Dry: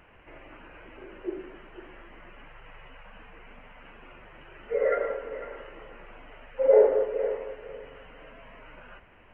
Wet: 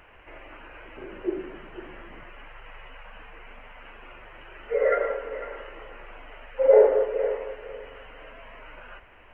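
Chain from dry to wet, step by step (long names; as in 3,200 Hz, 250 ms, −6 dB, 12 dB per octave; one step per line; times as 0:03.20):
parametric band 170 Hz −9 dB 1.8 octaves, from 0:00.97 +2 dB, from 0:02.23 −9 dB
level +4.5 dB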